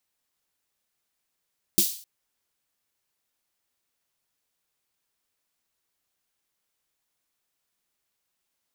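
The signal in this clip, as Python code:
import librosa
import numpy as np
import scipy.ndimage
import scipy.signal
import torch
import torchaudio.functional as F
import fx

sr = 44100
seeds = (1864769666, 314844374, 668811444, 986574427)

y = fx.drum_snare(sr, seeds[0], length_s=0.26, hz=200.0, second_hz=340.0, noise_db=3.5, noise_from_hz=3500.0, decay_s=0.11, noise_decay_s=0.46)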